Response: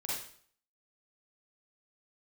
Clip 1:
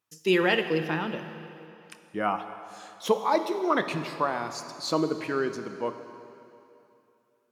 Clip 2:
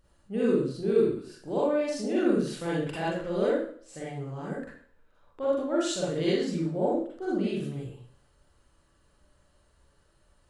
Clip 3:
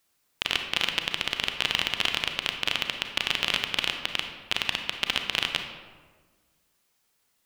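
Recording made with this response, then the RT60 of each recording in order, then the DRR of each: 2; 2.8 s, 0.55 s, 1.5 s; 8.5 dB, -7.5 dB, 4.5 dB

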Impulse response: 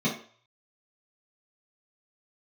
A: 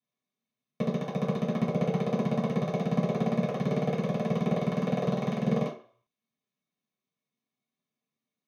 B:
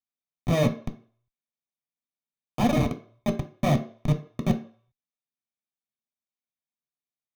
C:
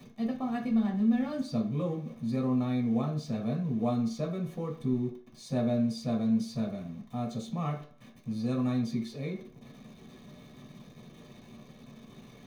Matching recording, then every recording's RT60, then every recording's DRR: A; 0.45 s, 0.45 s, 0.45 s; -7.5 dB, 5.0 dB, -1.5 dB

